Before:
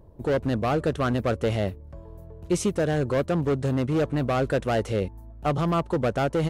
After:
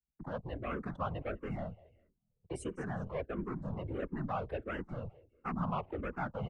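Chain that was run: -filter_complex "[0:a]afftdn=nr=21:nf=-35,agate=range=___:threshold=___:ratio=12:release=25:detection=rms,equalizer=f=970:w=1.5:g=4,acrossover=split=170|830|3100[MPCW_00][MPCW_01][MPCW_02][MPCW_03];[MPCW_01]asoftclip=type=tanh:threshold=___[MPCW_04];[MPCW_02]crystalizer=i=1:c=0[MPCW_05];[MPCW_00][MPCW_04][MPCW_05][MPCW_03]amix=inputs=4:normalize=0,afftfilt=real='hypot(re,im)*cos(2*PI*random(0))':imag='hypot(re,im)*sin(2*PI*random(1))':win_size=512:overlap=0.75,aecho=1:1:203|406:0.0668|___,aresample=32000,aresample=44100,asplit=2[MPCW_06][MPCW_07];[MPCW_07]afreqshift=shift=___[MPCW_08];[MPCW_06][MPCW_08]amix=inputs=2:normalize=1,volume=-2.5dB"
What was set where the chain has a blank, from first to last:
-26dB, -37dB, -27dB, 0.0254, -1.5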